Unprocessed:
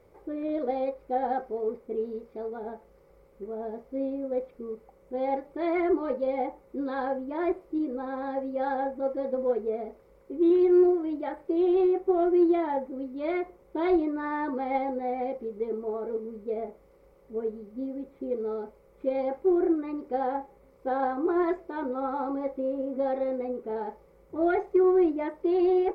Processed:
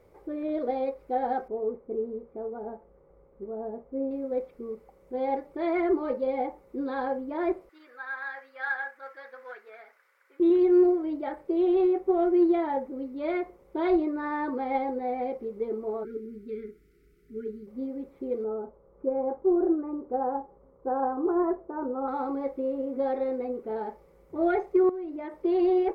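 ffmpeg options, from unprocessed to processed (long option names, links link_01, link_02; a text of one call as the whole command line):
ffmpeg -i in.wav -filter_complex "[0:a]asettb=1/sr,asplit=3[link_01][link_02][link_03];[link_01]atrim=end=1.484[link_04];[link_02]atrim=start=1.48:end=4.11,asetpts=PTS-STARTPTS,afade=type=in:duration=0.004:curve=qsin,afade=type=out:start_time=2.626:duration=0.004:curve=qsin,lowpass=1200[link_05];[link_03]atrim=start=4.106[link_06];[link_04][link_05]acrossfade=duration=0.004:curve1=hsin:curve2=qsin[link_07];[link_07][link_06]acrossfade=duration=0.004:curve1=qsin:curve2=hsin,asettb=1/sr,asplit=3[link_08][link_09][link_10];[link_08]atrim=end=7.694[link_11];[link_09]atrim=start=7.69:end=10.4,asetpts=PTS-STARTPTS,afade=type=in:duration=0.004:curve=qsin,afade=type=out:start_time=2.706:duration=0.004:curve=qsin,highpass=frequency=1600:width_type=q:width=4.3[link_12];[link_10]atrim=start=10.396[link_13];[link_11][link_12]acrossfade=duration=0.004:curve1=hsin:curve2=qsin[link_14];[link_14][link_13]acrossfade=duration=0.004:curve1=qsin:curve2=hsin,asplit=3[link_15][link_16][link_17];[link_15]afade=type=out:start_time=16.03:duration=0.02[link_18];[link_16]asuperstop=centerf=760:order=20:qfactor=0.86,afade=type=in:start_time=16.03:duration=0.02,afade=type=out:start_time=17.66:duration=0.02[link_19];[link_17]afade=type=in:start_time=17.66:duration=0.02[link_20];[link_18][link_19][link_20]amix=inputs=3:normalize=0,asettb=1/sr,asplit=3[link_21][link_22][link_23];[link_21]atrim=end=18.444[link_24];[link_22]atrim=start=18.44:end=22.08,asetpts=PTS-STARTPTS,afade=type=in:duration=0.004:curve=qsin,afade=type=out:start_time=3.636:duration=0.004:curve=qsin,lowpass=frequency=1300:width=0.5412,lowpass=frequency=1300:width=1.3066[link_25];[link_23]atrim=start=22.076[link_26];[link_24][link_25]acrossfade=duration=0.004:curve1=hsin:curve2=qsin[link_27];[link_27][link_26]acrossfade=duration=0.004:curve1=qsin:curve2=hsin,asettb=1/sr,asplit=3[link_28][link_29][link_30];[link_28]atrim=end=24.894[link_31];[link_29]atrim=start=24.89:end=25.45,asetpts=PTS-STARTPTS,afade=type=in:duration=0.004:curve=qsin,afade=type=out:start_time=0.556:duration=0.004:curve=qsin,acompressor=threshold=-32dB:ratio=16:attack=3.2:release=140:knee=1:detection=peak[link_32];[link_30]atrim=start=25.446[link_33];[link_31][link_32]acrossfade=duration=0.004:curve1=hsin:curve2=qsin[link_34];[link_34][link_33]acrossfade=duration=0.004:curve1=qsin:curve2=hsin" out.wav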